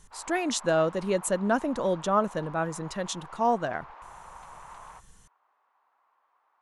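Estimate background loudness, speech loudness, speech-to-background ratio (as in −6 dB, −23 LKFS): −47.0 LKFS, −28.0 LKFS, 19.0 dB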